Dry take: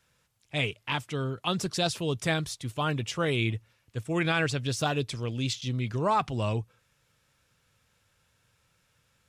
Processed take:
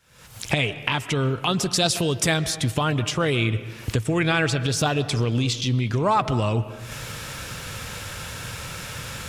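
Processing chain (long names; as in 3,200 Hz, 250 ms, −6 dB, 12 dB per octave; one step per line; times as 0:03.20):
camcorder AGC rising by 79 dB per second
0:01.71–0:02.37: high-shelf EQ 4,800 Hz +6.5 dB
convolution reverb RT60 1.2 s, pre-delay 90 ms, DRR 13 dB
level +5 dB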